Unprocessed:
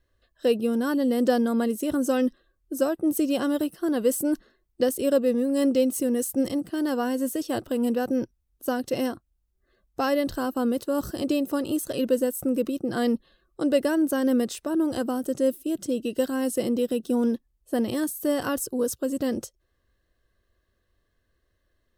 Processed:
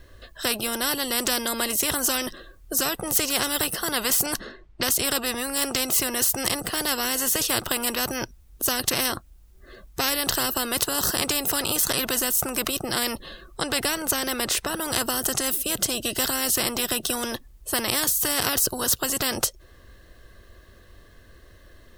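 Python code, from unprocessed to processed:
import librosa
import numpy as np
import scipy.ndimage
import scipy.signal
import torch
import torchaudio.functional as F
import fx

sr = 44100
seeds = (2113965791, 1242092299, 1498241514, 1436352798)

y = fx.env_lowpass(x, sr, base_hz=2300.0, full_db=-21.0, at=(4.26, 5.32))
y = fx.high_shelf(y, sr, hz=6300.0, db=-7.0, at=(13.61, 14.74))
y = fx.spectral_comp(y, sr, ratio=4.0)
y = F.gain(torch.from_numpy(y), 7.0).numpy()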